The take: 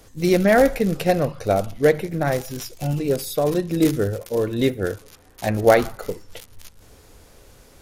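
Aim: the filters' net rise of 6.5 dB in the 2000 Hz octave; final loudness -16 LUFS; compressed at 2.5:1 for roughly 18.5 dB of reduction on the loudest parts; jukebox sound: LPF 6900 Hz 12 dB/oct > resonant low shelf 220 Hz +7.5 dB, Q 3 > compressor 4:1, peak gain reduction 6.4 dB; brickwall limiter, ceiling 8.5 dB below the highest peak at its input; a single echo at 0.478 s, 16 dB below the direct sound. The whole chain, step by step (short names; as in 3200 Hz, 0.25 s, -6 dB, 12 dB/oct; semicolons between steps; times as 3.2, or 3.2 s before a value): bell 2000 Hz +8 dB; compressor 2.5:1, threshold -38 dBFS; limiter -27 dBFS; LPF 6900 Hz 12 dB/oct; resonant low shelf 220 Hz +7.5 dB, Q 3; echo 0.478 s -16 dB; compressor 4:1, threshold -28 dBFS; gain +19 dB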